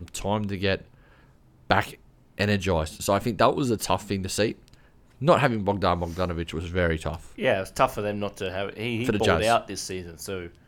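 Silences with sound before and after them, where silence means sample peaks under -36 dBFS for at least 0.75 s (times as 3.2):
0.81–1.7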